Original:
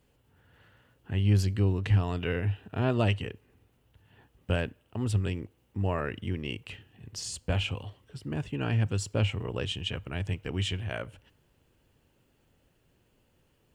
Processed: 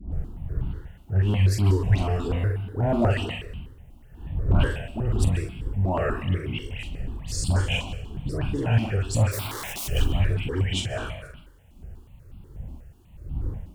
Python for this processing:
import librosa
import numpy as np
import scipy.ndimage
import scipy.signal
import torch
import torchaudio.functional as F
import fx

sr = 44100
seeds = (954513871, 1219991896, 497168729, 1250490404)

y = fx.dmg_wind(x, sr, seeds[0], corner_hz=100.0, level_db=-37.0)
y = fx.peak_eq(y, sr, hz=2600.0, db=-13.5, octaves=1.3, at=(2.18, 2.99))
y = fx.dispersion(y, sr, late='highs', ms=130.0, hz=1600.0)
y = fx.clip_asym(y, sr, top_db=-21.0, bottom_db=-16.0)
y = fx.doubler(y, sr, ms=43.0, db=-6.0)
y = fx.overflow_wrap(y, sr, gain_db=34.0, at=(9.31, 9.87), fade=0.02)
y = fx.rev_plate(y, sr, seeds[1], rt60_s=0.74, hf_ratio=0.9, predelay_ms=115, drr_db=12.0)
y = fx.phaser_held(y, sr, hz=8.2, low_hz=460.0, high_hz=1800.0)
y = y * librosa.db_to_amplitude(7.5)